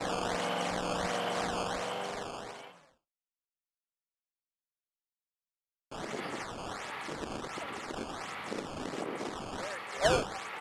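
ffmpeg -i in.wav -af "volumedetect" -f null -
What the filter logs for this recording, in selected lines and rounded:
mean_volume: -37.5 dB
max_volume: -12.9 dB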